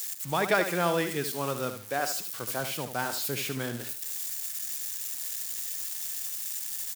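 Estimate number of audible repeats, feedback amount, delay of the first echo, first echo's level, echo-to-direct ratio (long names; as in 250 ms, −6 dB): 3, 28%, 75 ms, −9.0 dB, −8.5 dB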